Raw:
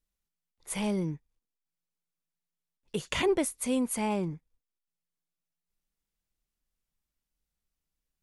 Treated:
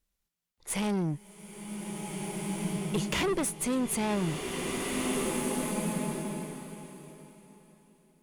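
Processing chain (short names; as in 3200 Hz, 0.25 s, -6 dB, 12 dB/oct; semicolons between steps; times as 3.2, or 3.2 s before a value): tube stage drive 32 dB, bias 0.4; bloom reverb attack 1.92 s, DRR 0 dB; gain +6 dB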